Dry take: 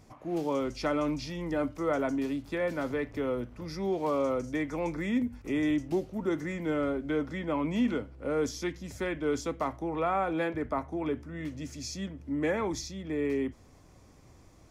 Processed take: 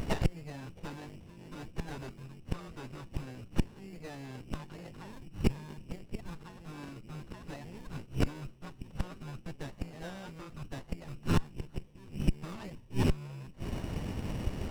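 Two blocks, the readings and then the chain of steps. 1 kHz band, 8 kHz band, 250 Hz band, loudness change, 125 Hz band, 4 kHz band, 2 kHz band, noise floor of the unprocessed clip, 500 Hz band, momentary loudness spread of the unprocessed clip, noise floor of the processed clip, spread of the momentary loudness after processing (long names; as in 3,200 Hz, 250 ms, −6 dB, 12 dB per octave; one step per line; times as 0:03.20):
−10.5 dB, −7.0 dB, −8.5 dB, −7.5 dB, +3.5 dB, −3.5 dB, −9.0 dB, −56 dBFS, −13.0 dB, 7 LU, −54 dBFS, 15 LU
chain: low-shelf EQ 430 Hz +8 dB
harmonic and percussive parts rebalanced percussive +8 dB
gate with flip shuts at −23 dBFS, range −28 dB
voice inversion scrambler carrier 2,900 Hz
windowed peak hold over 17 samples
level +12 dB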